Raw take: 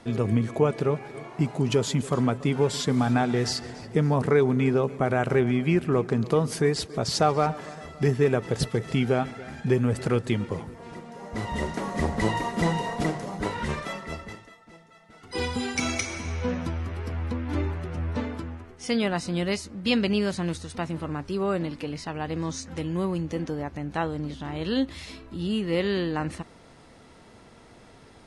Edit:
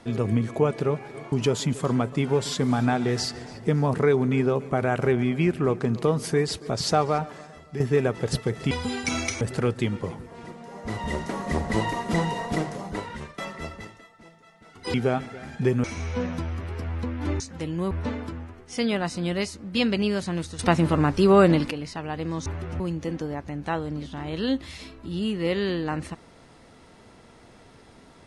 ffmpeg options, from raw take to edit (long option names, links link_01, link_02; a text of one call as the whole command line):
ffmpeg -i in.wav -filter_complex "[0:a]asplit=14[link_01][link_02][link_03][link_04][link_05][link_06][link_07][link_08][link_09][link_10][link_11][link_12][link_13][link_14];[link_01]atrim=end=1.322[link_15];[link_02]atrim=start=1.598:end=8.08,asetpts=PTS-STARTPTS,afade=type=out:start_time=5.672:duration=0.81:silence=0.316228[link_16];[link_03]atrim=start=8.08:end=8.992,asetpts=PTS-STARTPTS,afade=type=in:duration=0.004:curve=hsin:silence=0.316228[link_17];[link_04]atrim=start=15.418:end=16.122[link_18];[link_05]atrim=start=9.888:end=13.86,asetpts=PTS-STARTPTS,afade=type=out:start_time=3.372:duration=0.6:silence=0.149624[link_19];[link_06]atrim=start=13.86:end=15.422,asetpts=PTS-STARTPTS,afade=type=in:duration=0.004:curve=hsin:silence=0.149624[link_20];[link_07]atrim=start=8.988:end=9.892[link_21];[link_08]atrim=start=16.118:end=17.682[link_22];[link_09]atrim=start=22.568:end=23.082[link_23];[link_10]atrim=start=18.018:end=20.702[link_24];[link_11]atrim=start=20.698:end=21.822,asetpts=PTS-STARTPTS,volume=10.5dB[link_25];[link_12]atrim=start=21.818:end=22.572[link_26];[link_13]atrim=start=17.678:end=18.022[link_27];[link_14]atrim=start=23.078[link_28];[link_16][link_17]concat=n=2:v=0:a=1[link_29];[link_15][link_29]acrossfade=duration=0.004:curve1=hsin:curve2=hsin[link_30];[link_30][link_18]acrossfade=duration=0.004:curve1=hsin:curve2=hsin[link_31];[link_19][link_20]concat=n=2:v=0:a=1[link_32];[link_31][link_32]acrossfade=duration=0.004:curve1=hsin:curve2=hsin[link_33];[link_33][link_21]acrossfade=duration=0.004:curve1=hsin:curve2=hsin[link_34];[link_34][link_22]acrossfade=duration=0.004:curve1=hsin:curve2=hsin[link_35];[link_35][link_23]acrossfade=duration=0.004:curve1=hsin:curve2=hsin[link_36];[link_36][link_24]acrossfade=duration=0.004:curve1=hsin:curve2=hsin[link_37];[link_37][link_25]acrossfade=duration=0.004:curve1=hsin:curve2=hsin[link_38];[link_38][link_26]acrossfade=duration=0.004:curve1=hsin:curve2=hsin[link_39];[link_39][link_27]acrossfade=duration=0.004:curve1=hsin:curve2=hsin[link_40];[link_40][link_28]acrossfade=duration=0.004:curve1=hsin:curve2=hsin" out.wav